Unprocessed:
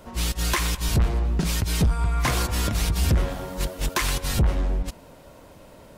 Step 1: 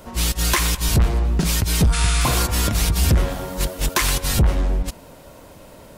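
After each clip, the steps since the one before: spectral repair 1.96–2.29, 1200–11000 Hz after; high shelf 6300 Hz +5 dB; gain +4 dB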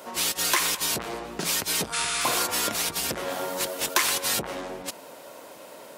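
compressor, threshold -19 dBFS, peak gain reduction 6.5 dB; HPF 380 Hz 12 dB/oct; gain +1.5 dB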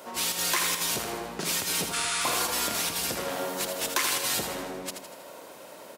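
in parallel at -2 dB: limiter -18 dBFS, peak gain reduction 10.5 dB; on the sum: feedback echo 80 ms, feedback 54%, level -7 dB; gain -7 dB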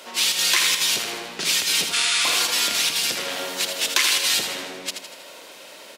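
weighting filter D

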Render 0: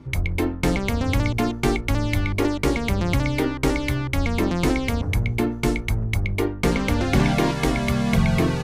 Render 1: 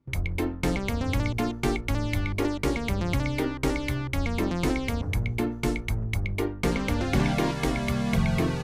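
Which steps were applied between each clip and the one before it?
gate with hold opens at -25 dBFS; gain -5 dB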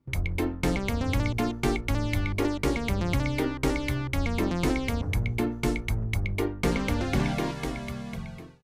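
ending faded out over 1.83 s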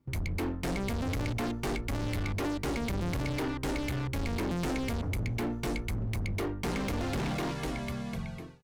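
overloaded stage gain 29.5 dB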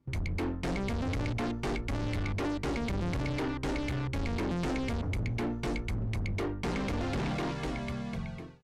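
air absorption 55 m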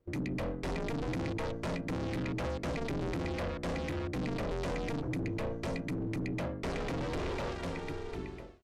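ring modulator 220 Hz

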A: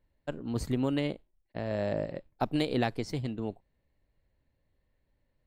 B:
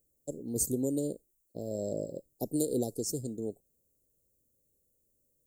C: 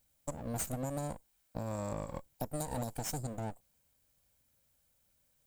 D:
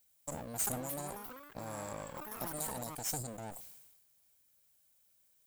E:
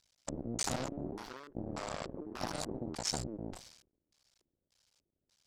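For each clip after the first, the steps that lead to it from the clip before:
elliptic band-stop 480–6900 Hz, stop band 70 dB; tilt +4 dB/oct; gain +6.5 dB
minimum comb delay 1.3 ms; compressor 6:1, threshold -37 dBFS, peak gain reduction 10 dB; gain +3 dB
tilt +2 dB/oct; echoes that change speed 0.473 s, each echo +6 st, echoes 3, each echo -6 dB; sustainer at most 46 dB/s; gain -3.5 dB
cycle switcher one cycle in 2, muted; LFO low-pass square 1.7 Hz 350–5100 Hz; gain +5.5 dB

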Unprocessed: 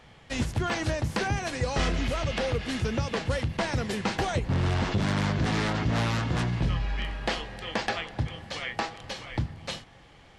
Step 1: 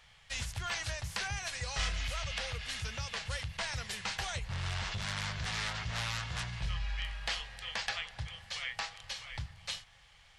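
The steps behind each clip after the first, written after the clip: passive tone stack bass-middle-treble 10-0-10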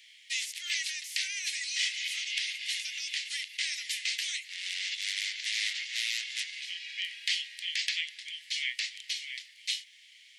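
Chebyshev high-pass 2000 Hz, order 5; gain +7.5 dB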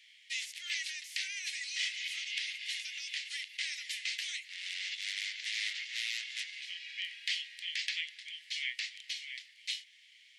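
high shelf 4700 Hz -7.5 dB; gain -2 dB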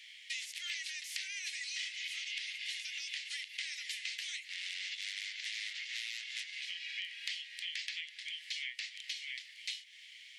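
compressor 4:1, threshold -46 dBFS, peak gain reduction 13.5 dB; gain +6.5 dB

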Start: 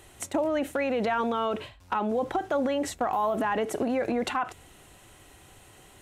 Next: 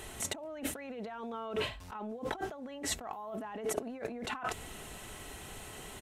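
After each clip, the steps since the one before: negative-ratio compressor -38 dBFS, ratio -1; comb 4.6 ms, depth 32%; gain -2.5 dB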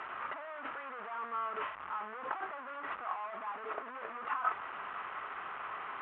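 delta modulation 16 kbps, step -34.5 dBFS; band-pass 1200 Hz, Q 3.7; gain +8.5 dB

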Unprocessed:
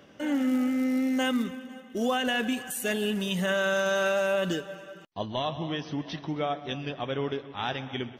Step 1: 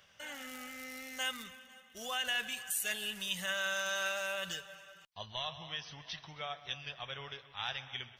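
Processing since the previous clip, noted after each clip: passive tone stack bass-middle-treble 10-0-10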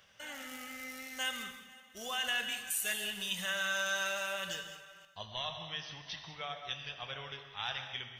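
non-linear reverb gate 0.24 s flat, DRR 6.5 dB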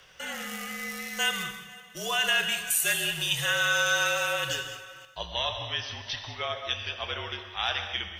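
frequency shift -44 Hz; gain +9 dB

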